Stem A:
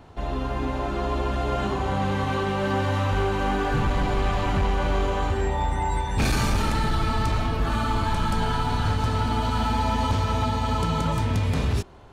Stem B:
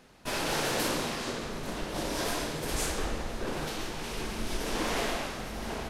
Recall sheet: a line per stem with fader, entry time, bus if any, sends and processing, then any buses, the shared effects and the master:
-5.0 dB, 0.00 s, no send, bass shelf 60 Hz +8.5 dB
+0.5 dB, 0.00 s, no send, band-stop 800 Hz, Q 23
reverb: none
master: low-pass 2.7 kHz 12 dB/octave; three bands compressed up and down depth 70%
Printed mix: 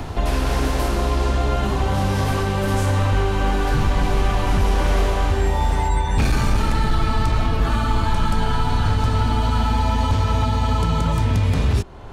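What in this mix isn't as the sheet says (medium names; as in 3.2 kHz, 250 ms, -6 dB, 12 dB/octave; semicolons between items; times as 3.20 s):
stem A -5.0 dB -> +1.5 dB; master: missing low-pass 2.7 kHz 12 dB/octave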